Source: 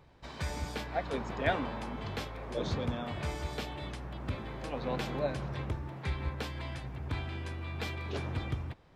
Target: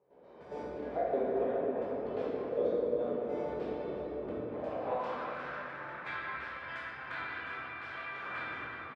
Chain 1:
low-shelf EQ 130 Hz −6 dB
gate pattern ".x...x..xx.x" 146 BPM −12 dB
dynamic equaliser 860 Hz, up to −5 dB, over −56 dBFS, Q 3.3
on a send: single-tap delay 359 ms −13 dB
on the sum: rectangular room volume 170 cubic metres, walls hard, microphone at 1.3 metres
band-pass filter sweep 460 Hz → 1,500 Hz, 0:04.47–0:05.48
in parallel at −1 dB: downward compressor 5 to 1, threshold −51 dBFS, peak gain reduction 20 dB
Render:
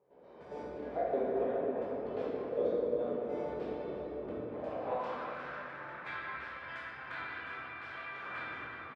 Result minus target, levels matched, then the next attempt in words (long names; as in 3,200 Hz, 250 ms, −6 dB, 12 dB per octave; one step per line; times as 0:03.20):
downward compressor: peak gain reduction +6.5 dB
low-shelf EQ 130 Hz −6 dB
gate pattern ".x...x..xx.x" 146 BPM −12 dB
dynamic equaliser 860 Hz, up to −5 dB, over −56 dBFS, Q 3.3
on a send: single-tap delay 359 ms −13 dB
on the sum: rectangular room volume 170 cubic metres, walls hard, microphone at 1.3 metres
band-pass filter sweep 460 Hz → 1,500 Hz, 0:04.47–0:05.48
in parallel at −1 dB: downward compressor 5 to 1, threshold −43 dBFS, peak gain reduction 13.5 dB